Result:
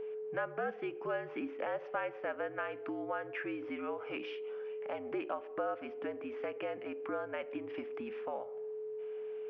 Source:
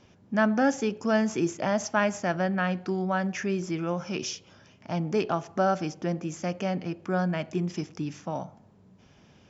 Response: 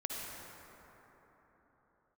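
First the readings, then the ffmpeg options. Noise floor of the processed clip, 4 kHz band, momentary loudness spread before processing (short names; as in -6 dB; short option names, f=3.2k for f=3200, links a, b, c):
-47 dBFS, -14.0 dB, 9 LU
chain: -af "highpass=f=400:t=q:w=0.5412,highpass=f=400:t=q:w=1.307,lowpass=f=2.9k:t=q:w=0.5176,lowpass=f=2.9k:t=q:w=0.7071,lowpass=f=2.9k:t=q:w=1.932,afreqshift=-65,aeval=exprs='val(0)+0.0112*sin(2*PI*430*n/s)':c=same,acompressor=threshold=-40dB:ratio=2.5,volume=1dB"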